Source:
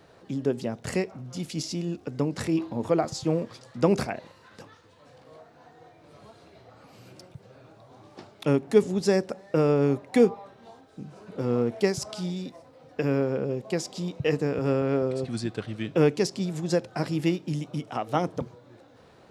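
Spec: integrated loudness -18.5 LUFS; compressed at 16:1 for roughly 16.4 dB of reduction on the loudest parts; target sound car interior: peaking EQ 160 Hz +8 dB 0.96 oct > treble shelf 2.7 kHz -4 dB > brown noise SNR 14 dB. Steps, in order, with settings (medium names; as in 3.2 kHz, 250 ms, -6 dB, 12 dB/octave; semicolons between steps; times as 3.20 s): compression 16:1, threshold -29 dBFS; peaking EQ 160 Hz +8 dB 0.96 oct; treble shelf 2.7 kHz -4 dB; brown noise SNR 14 dB; trim +14 dB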